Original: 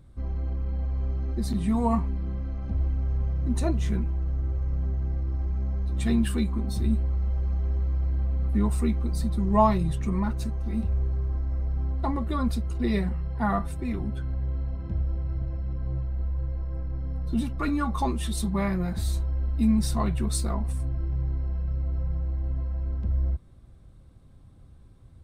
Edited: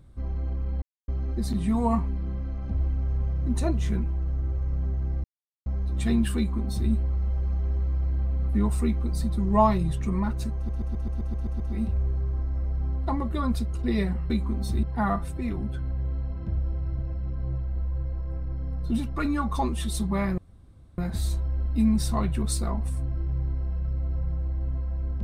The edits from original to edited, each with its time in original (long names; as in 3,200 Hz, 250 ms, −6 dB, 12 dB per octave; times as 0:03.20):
0:00.82–0:01.08: silence
0:05.24–0:05.66: silence
0:06.37–0:06.90: duplicate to 0:13.26
0:10.56: stutter 0.13 s, 9 plays
0:18.81: splice in room tone 0.60 s